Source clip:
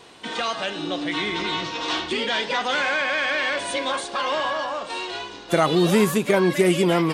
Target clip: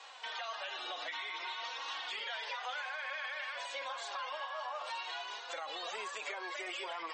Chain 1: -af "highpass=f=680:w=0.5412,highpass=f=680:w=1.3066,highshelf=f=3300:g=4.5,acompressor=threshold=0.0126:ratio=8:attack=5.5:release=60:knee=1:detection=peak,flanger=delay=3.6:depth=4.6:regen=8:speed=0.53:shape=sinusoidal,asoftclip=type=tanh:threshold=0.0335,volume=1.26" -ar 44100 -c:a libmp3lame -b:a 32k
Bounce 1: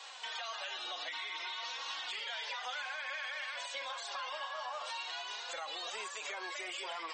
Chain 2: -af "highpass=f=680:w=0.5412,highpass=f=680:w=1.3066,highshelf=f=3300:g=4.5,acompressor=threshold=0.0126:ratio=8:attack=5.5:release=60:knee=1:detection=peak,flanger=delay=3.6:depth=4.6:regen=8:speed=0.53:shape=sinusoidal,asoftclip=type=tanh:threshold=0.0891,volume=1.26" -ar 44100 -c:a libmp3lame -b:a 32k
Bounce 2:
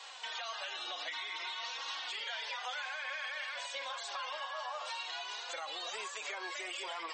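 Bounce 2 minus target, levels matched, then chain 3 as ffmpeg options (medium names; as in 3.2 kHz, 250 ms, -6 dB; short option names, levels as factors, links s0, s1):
8 kHz band +4.0 dB
-af "highpass=f=680:w=0.5412,highpass=f=680:w=1.3066,highshelf=f=3300:g=-4.5,acompressor=threshold=0.0126:ratio=8:attack=5.5:release=60:knee=1:detection=peak,flanger=delay=3.6:depth=4.6:regen=8:speed=0.53:shape=sinusoidal,asoftclip=type=tanh:threshold=0.0891,volume=1.26" -ar 44100 -c:a libmp3lame -b:a 32k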